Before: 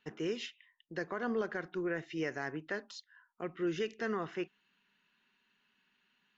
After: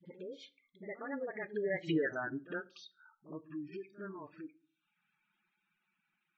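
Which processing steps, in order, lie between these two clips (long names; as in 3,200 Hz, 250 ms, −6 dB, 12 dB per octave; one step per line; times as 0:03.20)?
source passing by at 0:01.91, 46 m/s, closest 7.4 metres
reverb reduction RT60 0.63 s
gate on every frequency bin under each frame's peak −15 dB strong
all-pass dispersion highs, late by 56 ms, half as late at 330 Hz
echo ahead of the sound 62 ms −16.5 dB
on a send at −13.5 dB: convolution reverb RT60 0.30 s, pre-delay 3 ms
on the sum: multiband upward and downward compressor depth 40%
level +9.5 dB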